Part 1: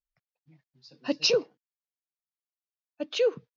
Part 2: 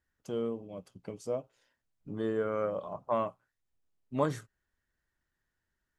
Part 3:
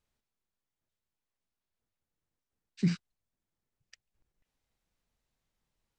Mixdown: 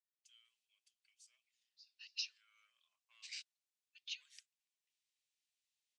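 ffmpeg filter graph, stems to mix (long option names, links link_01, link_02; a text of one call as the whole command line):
ffmpeg -i stem1.wav -i stem2.wav -i stem3.wav -filter_complex "[0:a]adelay=950,volume=-10.5dB[link_01];[1:a]acontrast=77,asoftclip=type=tanh:threshold=-11.5dB,volume=-18dB[link_02];[2:a]adelay=450,volume=-1.5dB[link_03];[link_01][link_02]amix=inputs=2:normalize=0,acompressor=threshold=-37dB:ratio=6,volume=0dB[link_04];[link_03][link_04]amix=inputs=2:normalize=0,asuperpass=centerf=5100:order=8:qfactor=0.67" out.wav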